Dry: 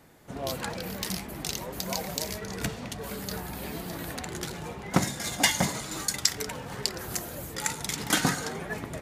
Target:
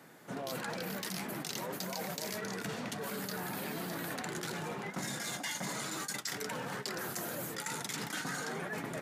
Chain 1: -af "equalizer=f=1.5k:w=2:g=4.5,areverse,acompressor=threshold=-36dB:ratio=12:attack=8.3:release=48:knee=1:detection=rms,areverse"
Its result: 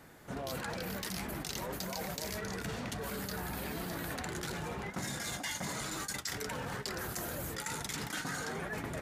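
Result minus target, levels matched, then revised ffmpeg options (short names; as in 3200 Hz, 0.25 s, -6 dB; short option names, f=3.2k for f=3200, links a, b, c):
125 Hz band +3.0 dB
-af "highpass=f=140:w=0.5412,highpass=f=140:w=1.3066,equalizer=f=1.5k:w=2:g=4.5,areverse,acompressor=threshold=-36dB:ratio=12:attack=8.3:release=48:knee=1:detection=rms,areverse"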